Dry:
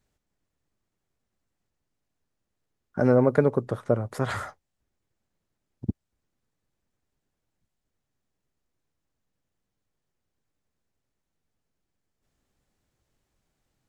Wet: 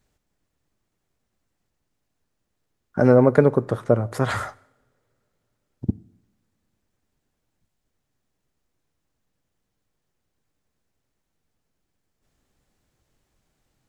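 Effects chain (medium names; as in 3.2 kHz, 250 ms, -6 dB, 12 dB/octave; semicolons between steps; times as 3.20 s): two-slope reverb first 0.71 s, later 3.4 s, from -27 dB, DRR 18.5 dB; trim +5 dB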